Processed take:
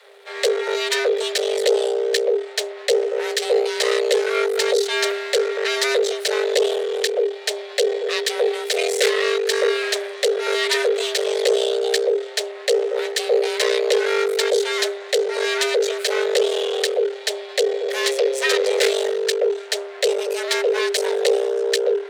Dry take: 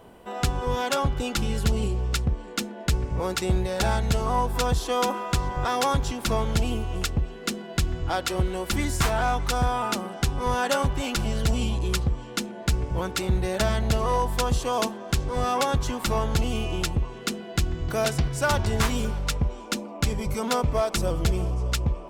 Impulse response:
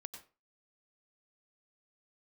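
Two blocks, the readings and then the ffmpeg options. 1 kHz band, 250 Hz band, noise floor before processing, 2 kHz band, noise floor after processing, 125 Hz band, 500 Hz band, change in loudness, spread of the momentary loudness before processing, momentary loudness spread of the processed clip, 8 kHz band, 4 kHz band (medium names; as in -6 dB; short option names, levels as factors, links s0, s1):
-3.5 dB, no reading, -39 dBFS, +8.0 dB, -36 dBFS, under -40 dB, +12.0 dB, +6.0 dB, 5 LU, 4 LU, +5.5 dB, +9.0 dB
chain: -af "aeval=exprs='max(val(0),0)':c=same,afreqshift=400,equalizer=f=250:t=o:w=1:g=5,equalizer=f=500:t=o:w=1:g=9,equalizer=f=1000:t=o:w=1:g=-8,equalizer=f=2000:t=o:w=1:g=9,equalizer=f=4000:t=o:w=1:g=11,equalizer=f=8000:t=o:w=1:g=6"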